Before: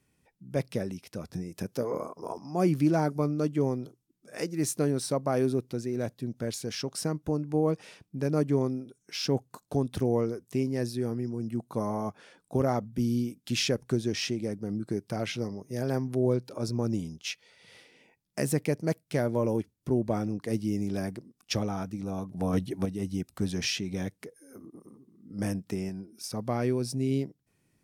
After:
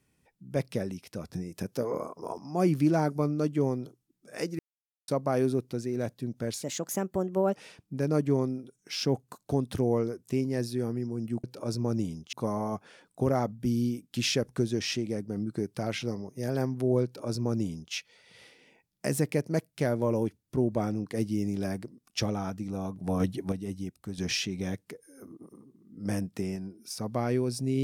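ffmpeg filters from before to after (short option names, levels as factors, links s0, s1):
-filter_complex "[0:a]asplit=8[s0][s1][s2][s3][s4][s5][s6][s7];[s0]atrim=end=4.59,asetpts=PTS-STARTPTS,afade=t=out:st=4.586:d=0.004:c=hsin[s8];[s1]atrim=start=4.59:end=5.08,asetpts=PTS-STARTPTS,volume=0[s9];[s2]atrim=start=5.08:end=6.634,asetpts=PTS-STARTPTS,afade=t=in:d=0.004:c=hsin[s10];[s3]atrim=start=6.63:end=7.78,asetpts=PTS-STARTPTS,asetrate=54684,aresample=44100,atrim=end_sample=40899,asetpts=PTS-STARTPTS[s11];[s4]atrim=start=7.776:end=11.662[s12];[s5]atrim=start=16.378:end=17.272[s13];[s6]atrim=start=11.658:end=23.51,asetpts=PTS-STARTPTS,afade=t=out:st=10.982:d=0.87:silence=0.334965[s14];[s7]atrim=start=23.51,asetpts=PTS-STARTPTS,afade=t=in:d=0.004:c=hsin:silence=0.334965[s15];[s8][s9][s10]concat=n=3:v=0:a=1[s16];[s16][s11]acrossfade=d=0.004:c1=hsin:c2=hsin[s17];[s17][s12]acrossfade=d=0.004:c1=hsin:c2=hsin[s18];[s18][s13]acrossfade=d=0.004:c1=hsin:c2=hsin[s19];[s14][s15]concat=n=2:v=0:a=1[s20];[s19][s20]acrossfade=d=0.004:c1=hsin:c2=hsin"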